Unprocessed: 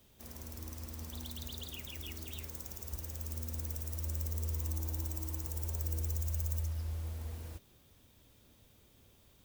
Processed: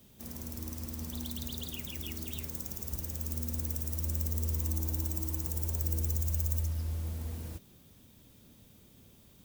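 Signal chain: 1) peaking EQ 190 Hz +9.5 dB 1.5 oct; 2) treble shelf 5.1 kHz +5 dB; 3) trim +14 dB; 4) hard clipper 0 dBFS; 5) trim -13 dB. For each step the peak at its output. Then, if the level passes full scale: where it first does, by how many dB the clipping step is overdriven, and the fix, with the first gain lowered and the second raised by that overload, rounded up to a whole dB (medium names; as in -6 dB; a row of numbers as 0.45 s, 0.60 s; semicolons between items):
-21.0 dBFS, -17.5 dBFS, -3.5 dBFS, -3.5 dBFS, -16.5 dBFS; nothing clips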